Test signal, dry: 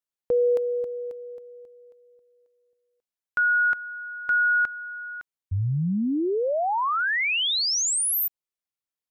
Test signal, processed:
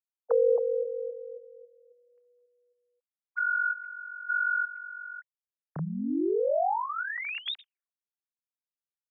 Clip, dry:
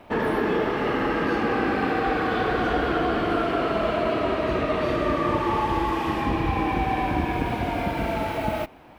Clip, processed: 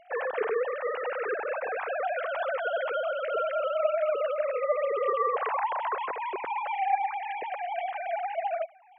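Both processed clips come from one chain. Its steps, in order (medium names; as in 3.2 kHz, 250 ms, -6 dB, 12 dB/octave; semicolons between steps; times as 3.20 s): formants replaced by sine waves; trim -5.5 dB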